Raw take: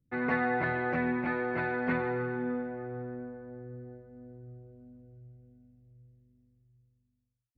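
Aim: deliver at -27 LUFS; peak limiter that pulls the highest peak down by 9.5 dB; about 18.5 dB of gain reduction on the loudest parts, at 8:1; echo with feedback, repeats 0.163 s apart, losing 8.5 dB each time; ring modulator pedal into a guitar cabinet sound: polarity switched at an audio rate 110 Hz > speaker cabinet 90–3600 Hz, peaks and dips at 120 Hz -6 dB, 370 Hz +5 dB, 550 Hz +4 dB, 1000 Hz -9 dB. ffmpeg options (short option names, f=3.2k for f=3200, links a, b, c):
-af "acompressor=threshold=-45dB:ratio=8,alimiter=level_in=20dB:limit=-24dB:level=0:latency=1,volume=-20dB,aecho=1:1:163|326|489|652:0.376|0.143|0.0543|0.0206,aeval=exprs='val(0)*sgn(sin(2*PI*110*n/s))':c=same,highpass=90,equalizer=f=120:t=q:w=4:g=-6,equalizer=f=370:t=q:w=4:g=5,equalizer=f=550:t=q:w=4:g=4,equalizer=f=1k:t=q:w=4:g=-9,lowpass=f=3.6k:w=0.5412,lowpass=f=3.6k:w=1.3066,volume=23.5dB"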